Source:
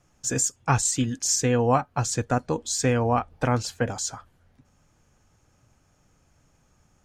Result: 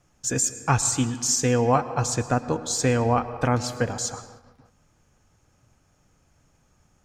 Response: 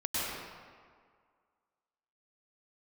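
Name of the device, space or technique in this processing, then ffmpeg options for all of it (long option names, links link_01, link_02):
keyed gated reverb: -filter_complex "[0:a]asplit=3[link_01][link_02][link_03];[1:a]atrim=start_sample=2205[link_04];[link_02][link_04]afir=irnorm=-1:irlink=0[link_05];[link_03]apad=whole_len=310849[link_06];[link_05][link_06]sidechaingate=range=-33dB:threshold=-59dB:ratio=16:detection=peak,volume=-19dB[link_07];[link_01][link_07]amix=inputs=2:normalize=0"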